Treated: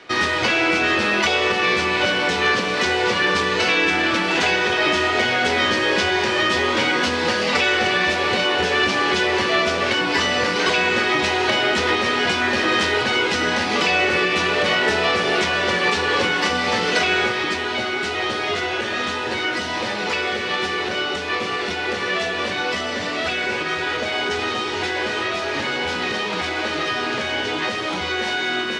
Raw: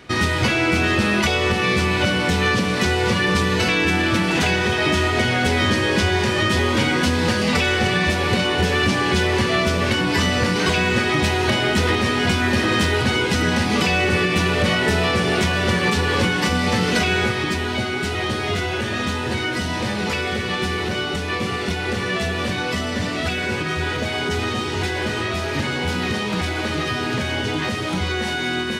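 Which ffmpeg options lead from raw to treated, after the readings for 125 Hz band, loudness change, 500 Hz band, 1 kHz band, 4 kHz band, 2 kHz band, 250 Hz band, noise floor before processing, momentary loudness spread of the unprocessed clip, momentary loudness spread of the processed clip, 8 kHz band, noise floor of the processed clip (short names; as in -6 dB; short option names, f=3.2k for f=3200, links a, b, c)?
-12.5 dB, +0.5 dB, +0.5 dB, +2.0 dB, +1.5 dB, +2.0 dB, -5.0 dB, -25 dBFS, 5 LU, 5 LU, -2.0 dB, -25 dBFS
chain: -filter_complex "[0:a]acrossover=split=310 7300:gain=0.158 1 0.0891[a][b][c];[a][b][c]amix=inputs=3:normalize=0,flanger=delay=6.1:depth=9.9:regen=-78:speed=1.3:shape=sinusoidal,volume=6.5dB"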